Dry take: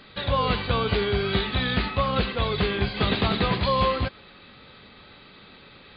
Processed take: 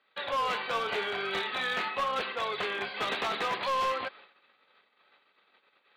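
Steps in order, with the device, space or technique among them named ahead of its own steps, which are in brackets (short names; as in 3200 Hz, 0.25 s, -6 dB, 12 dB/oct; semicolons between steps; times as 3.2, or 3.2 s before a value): walkie-talkie (BPF 600–2900 Hz; hard clip -24 dBFS, distortion -14 dB; gate -50 dBFS, range -18 dB); 0.52–2.05 doubler 26 ms -8 dB; gain -1.5 dB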